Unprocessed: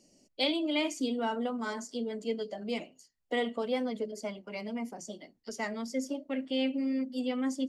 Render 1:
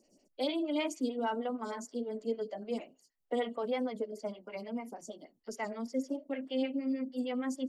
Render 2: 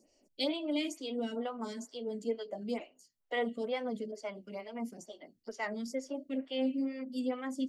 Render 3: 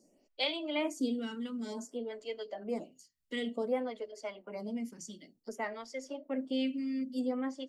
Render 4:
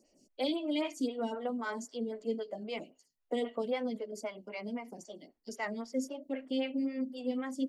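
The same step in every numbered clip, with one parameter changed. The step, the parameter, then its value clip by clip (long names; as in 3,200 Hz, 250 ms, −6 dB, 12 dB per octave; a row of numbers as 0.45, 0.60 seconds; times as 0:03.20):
phaser with staggered stages, speed: 6.5, 2.2, 0.55, 3.8 Hertz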